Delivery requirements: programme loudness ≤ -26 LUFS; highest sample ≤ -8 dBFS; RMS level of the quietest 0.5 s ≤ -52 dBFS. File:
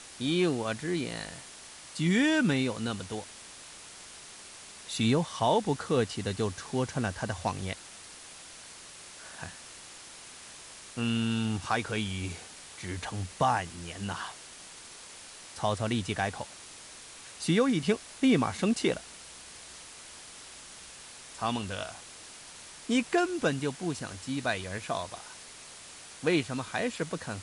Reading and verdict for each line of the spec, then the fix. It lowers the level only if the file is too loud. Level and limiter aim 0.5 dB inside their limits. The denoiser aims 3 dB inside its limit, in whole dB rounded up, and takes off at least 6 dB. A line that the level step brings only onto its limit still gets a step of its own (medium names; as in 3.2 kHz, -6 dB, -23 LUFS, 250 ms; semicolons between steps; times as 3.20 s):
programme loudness -30.5 LUFS: pass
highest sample -13.5 dBFS: pass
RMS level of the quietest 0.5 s -48 dBFS: fail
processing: noise reduction 7 dB, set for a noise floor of -48 dBFS